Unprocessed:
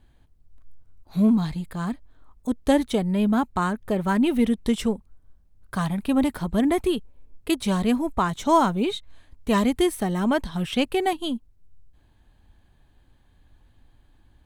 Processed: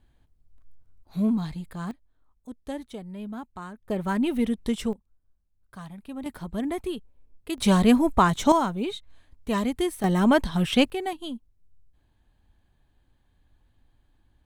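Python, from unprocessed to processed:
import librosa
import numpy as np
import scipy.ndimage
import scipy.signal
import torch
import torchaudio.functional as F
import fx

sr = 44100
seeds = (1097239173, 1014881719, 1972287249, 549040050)

y = fx.gain(x, sr, db=fx.steps((0.0, -5.0), (1.91, -15.0), (3.9, -4.0), (4.93, -15.5), (6.26, -8.0), (7.58, 4.0), (8.52, -5.0), (10.04, 3.0), (10.9, -7.0)))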